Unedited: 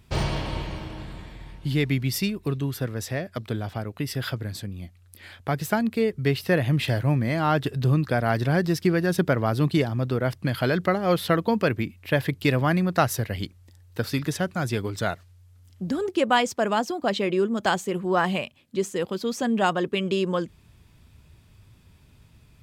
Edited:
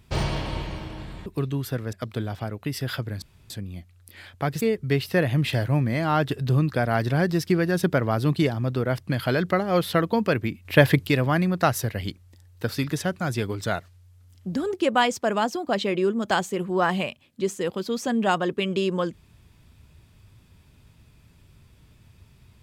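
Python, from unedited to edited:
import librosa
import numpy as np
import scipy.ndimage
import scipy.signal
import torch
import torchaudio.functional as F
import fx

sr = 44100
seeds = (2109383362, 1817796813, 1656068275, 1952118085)

y = fx.edit(x, sr, fx.cut(start_s=1.26, length_s=1.09),
    fx.cut(start_s=3.02, length_s=0.25),
    fx.insert_room_tone(at_s=4.56, length_s=0.28),
    fx.cut(start_s=5.67, length_s=0.29),
    fx.clip_gain(start_s=12.0, length_s=0.42, db=7.0), tone=tone)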